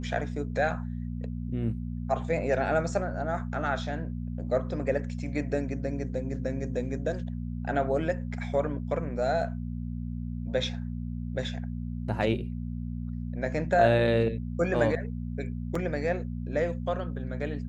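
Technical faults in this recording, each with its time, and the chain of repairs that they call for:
mains hum 60 Hz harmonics 4 −34 dBFS
0:15.75: drop-out 4.2 ms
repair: hum removal 60 Hz, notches 4
repair the gap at 0:15.75, 4.2 ms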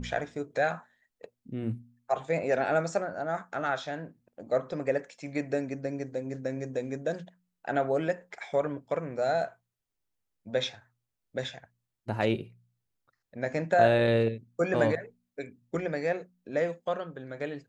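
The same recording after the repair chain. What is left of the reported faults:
none of them is left

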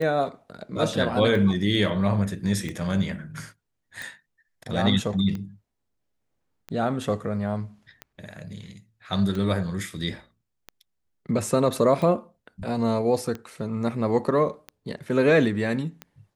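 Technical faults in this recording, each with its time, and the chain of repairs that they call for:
scratch tick 45 rpm −20 dBFS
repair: click removal

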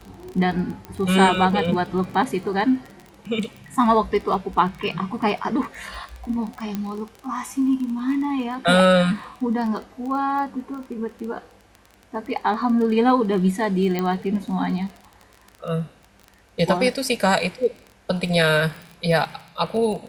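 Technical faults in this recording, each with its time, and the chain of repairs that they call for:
surface crackle 21 per second −29 dBFS
0:00.85: click −20 dBFS
0:06.75: click −14 dBFS
0:13.99: click −11 dBFS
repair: click removal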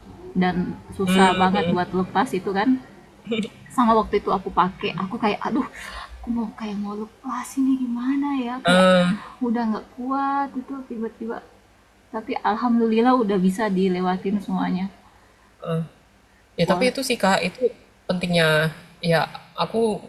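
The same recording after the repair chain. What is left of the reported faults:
none of them is left

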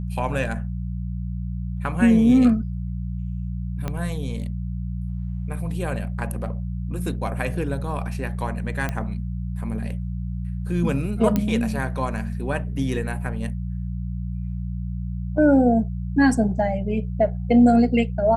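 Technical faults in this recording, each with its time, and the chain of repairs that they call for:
mains hum 60 Hz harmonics 3 −28 dBFS
0:03.88: click −14 dBFS
0:08.89: click −13 dBFS
0:11.36: click −9 dBFS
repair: click removal
hum removal 60 Hz, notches 3

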